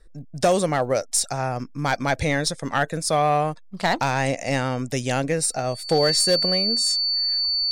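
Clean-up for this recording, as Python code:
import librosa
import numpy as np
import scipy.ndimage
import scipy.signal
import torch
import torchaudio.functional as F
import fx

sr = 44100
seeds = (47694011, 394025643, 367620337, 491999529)

y = fx.fix_declip(x, sr, threshold_db=-12.0)
y = fx.notch(y, sr, hz=4500.0, q=30.0)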